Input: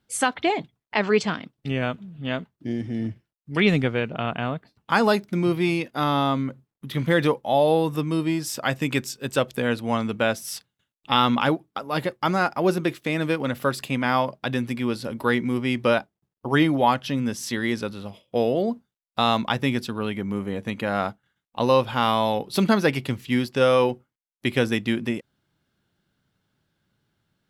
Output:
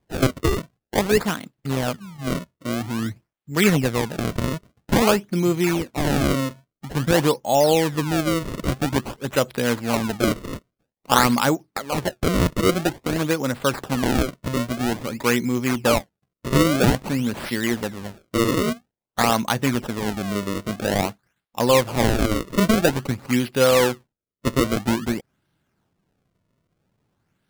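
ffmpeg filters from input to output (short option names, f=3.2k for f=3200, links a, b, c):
-af "acrusher=samples=31:mix=1:aa=0.000001:lfo=1:lforange=49.6:lforate=0.5,volume=2dB"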